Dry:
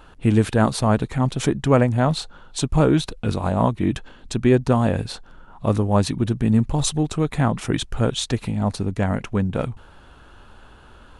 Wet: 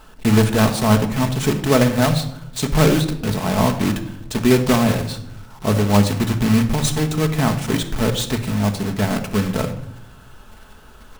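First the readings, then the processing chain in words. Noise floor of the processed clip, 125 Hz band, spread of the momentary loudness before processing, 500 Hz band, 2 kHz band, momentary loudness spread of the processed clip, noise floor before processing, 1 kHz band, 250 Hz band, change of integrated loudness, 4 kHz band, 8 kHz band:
−44 dBFS, +2.0 dB, 10 LU, +2.0 dB, +6.0 dB, 10 LU, −48 dBFS, +2.0 dB, +3.0 dB, +2.5 dB, +4.5 dB, +4.5 dB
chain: one scale factor per block 3 bits
rectangular room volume 2,200 cubic metres, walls furnished, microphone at 1.5 metres

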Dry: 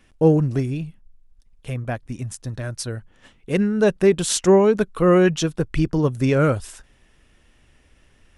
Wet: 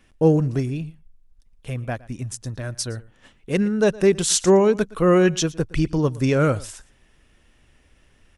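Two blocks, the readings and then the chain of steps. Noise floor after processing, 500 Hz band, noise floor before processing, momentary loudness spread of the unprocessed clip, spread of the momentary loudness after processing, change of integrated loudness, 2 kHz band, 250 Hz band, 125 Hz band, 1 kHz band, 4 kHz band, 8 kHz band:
−59 dBFS, −1.0 dB, −57 dBFS, 15 LU, 15 LU, −1.0 dB, −0.5 dB, −1.0 dB, −1.0 dB, −1.0 dB, +2.0 dB, +3.0 dB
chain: dynamic equaliser 6,100 Hz, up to +5 dB, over −46 dBFS, Q 1
single-tap delay 115 ms −21.5 dB
level −1 dB

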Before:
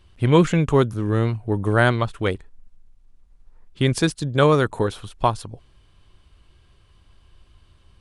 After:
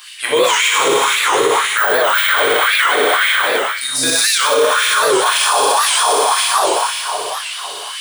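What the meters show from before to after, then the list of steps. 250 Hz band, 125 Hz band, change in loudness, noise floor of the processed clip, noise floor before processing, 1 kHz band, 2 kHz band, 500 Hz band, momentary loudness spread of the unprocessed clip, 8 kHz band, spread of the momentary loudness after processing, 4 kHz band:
−6.0 dB, −22.5 dB, +7.5 dB, −27 dBFS, −56 dBFS, +13.0 dB, +15.0 dB, +6.5 dB, 9 LU, +24.0 dB, 7 LU, +19.5 dB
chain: low-shelf EQ 450 Hz −6 dB
gain on a spectral selection 0:02.52–0:04.03, 280–3,700 Hz −28 dB
de-essing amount 70%
on a send: flutter between parallel walls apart 10.4 metres, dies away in 1.2 s
on the sum: dense smooth reverb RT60 3.7 s, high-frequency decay 0.95×, DRR −9.5 dB
reversed playback
downward compressor 6 to 1, threshold −23 dBFS, peak gain reduction 18 dB
reversed playback
first-order pre-emphasis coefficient 0.9
auto-filter high-pass sine 1.9 Hz 430–2,200 Hz
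boost into a limiter +34.5 dB
wow of a warped record 78 rpm, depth 160 cents
level −3.5 dB

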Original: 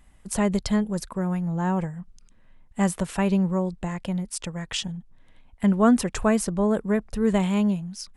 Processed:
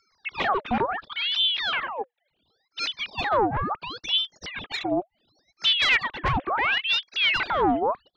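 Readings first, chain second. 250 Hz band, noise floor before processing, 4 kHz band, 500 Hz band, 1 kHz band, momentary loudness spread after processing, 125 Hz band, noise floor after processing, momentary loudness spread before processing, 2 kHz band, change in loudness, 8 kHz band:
−11.0 dB, −55 dBFS, +15.0 dB, −3.0 dB, +6.5 dB, 11 LU, −10.5 dB, −76 dBFS, 11 LU, +11.5 dB, +1.0 dB, −14.0 dB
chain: three sine waves on the formant tracks
tube saturation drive 23 dB, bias 0.45
ring modulator whose carrier an LFO sweeps 1,900 Hz, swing 75%, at 0.71 Hz
level +8 dB

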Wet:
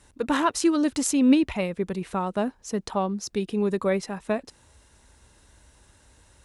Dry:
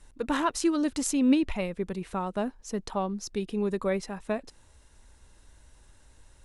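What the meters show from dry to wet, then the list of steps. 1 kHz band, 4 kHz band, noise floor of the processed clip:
+4.0 dB, +4.0 dB, −60 dBFS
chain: high-pass filter 59 Hz 12 dB per octave
level +4 dB

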